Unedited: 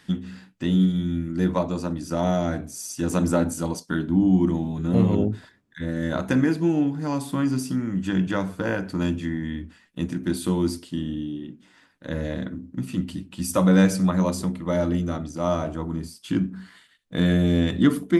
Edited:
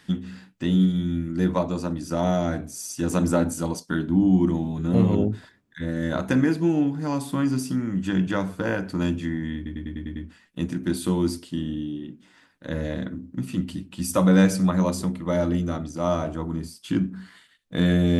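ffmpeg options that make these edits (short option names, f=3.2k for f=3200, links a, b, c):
-filter_complex "[0:a]asplit=7[a][b][c][d][e][f][g];[a]atrim=end=9.662[h];[b]atrim=start=9.558:end=9.662[i];[c]atrim=start=9.558:end=9.662[j];[d]atrim=start=9.558:end=9.662[k];[e]atrim=start=9.558:end=9.662[l];[f]atrim=start=9.558:end=9.662[m];[g]atrim=start=9.558[n];[h][i]acrossfade=d=0.004:c1=hsin:c2=hsin[o];[o][j]acrossfade=d=0.004:c1=hsin:c2=hsin[p];[p][k]acrossfade=d=0.004:c1=hsin:c2=hsin[q];[q][l]acrossfade=d=0.004:c1=hsin:c2=hsin[r];[r][m]acrossfade=d=0.004:c1=hsin:c2=hsin[s];[s][n]acrossfade=d=0.004:c1=hsin:c2=hsin"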